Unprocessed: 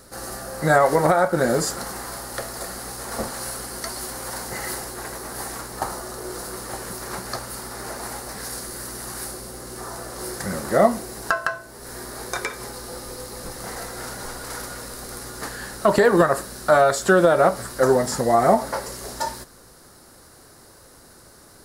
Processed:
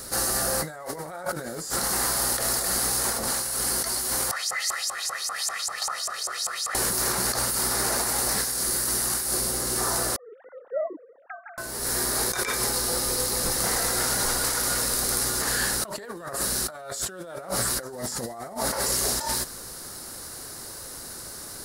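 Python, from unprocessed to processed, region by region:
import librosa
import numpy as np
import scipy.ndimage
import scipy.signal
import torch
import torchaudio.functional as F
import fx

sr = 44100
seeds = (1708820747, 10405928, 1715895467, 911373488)

y = fx.chain(x, sr, fx.filter_lfo_bandpass(shape='saw_up', hz=5.1, low_hz=900.0, high_hz=7700.0, q=4.1),
    fx.comb(ms=1.6, depth=0.72),
    fx.env_flatten(amount_pct=50), at=(4.31, 6.75))
y = fx.chain(y, sr, fx.sine_speech(),
    fx.bandpass_q(hz=270.0, q=2.8), at=(10.16, 11.58))
y = fx.high_shelf(y, sr, hz=2600.0, db=9.0)
y = fx.over_compress(y, sr, threshold_db=-29.0, ratio=-1.0)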